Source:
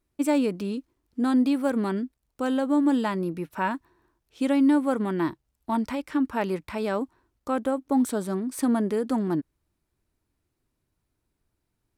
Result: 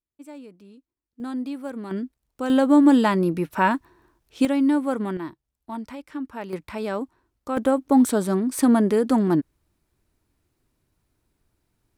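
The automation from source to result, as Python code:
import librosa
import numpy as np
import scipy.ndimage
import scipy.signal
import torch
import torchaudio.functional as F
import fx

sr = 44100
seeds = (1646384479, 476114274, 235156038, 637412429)

y = fx.gain(x, sr, db=fx.steps((0.0, -18.5), (1.2, -8.0), (1.91, 0.0), (2.5, 7.0), (4.45, 0.0), (5.17, -7.0), (6.53, -0.5), (7.57, 6.0)))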